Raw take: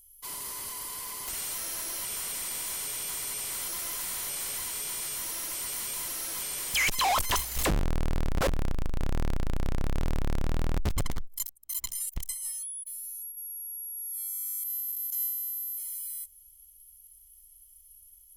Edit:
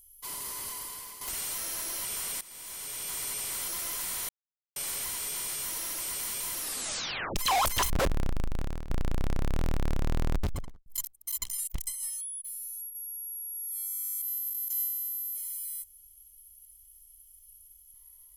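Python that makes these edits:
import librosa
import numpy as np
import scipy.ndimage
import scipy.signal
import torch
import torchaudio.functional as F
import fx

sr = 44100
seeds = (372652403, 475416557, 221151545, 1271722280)

y = fx.studio_fade_out(x, sr, start_s=10.73, length_s=0.55)
y = fx.edit(y, sr, fx.fade_out_to(start_s=0.71, length_s=0.5, floor_db=-9.0),
    fx.fade_in_from(start_s=2.41, length_s=0.81, floor_db=-18.0),
    fx.insert_silence(at_s=4.29, length_s=0.47),
    fx.tape_stop(start_s=6.14, length_s=0.75),
    fx.cut(start_s=7.43, length_s=0.89),
    fx.fade_out_to(start_s=8.88, length_s=0.44, floor_db=-16.5), tone=tone)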